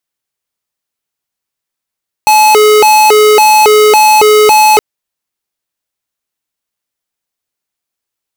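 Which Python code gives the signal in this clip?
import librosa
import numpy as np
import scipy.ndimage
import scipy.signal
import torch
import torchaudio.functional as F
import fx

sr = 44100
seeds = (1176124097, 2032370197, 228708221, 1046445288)

y = fx.siren(sr, length_s=2.52, kind='hi-lo', low_hz=425.0, high_hz=858.0, per_s=1.8, wave='square', level_db=-5.0)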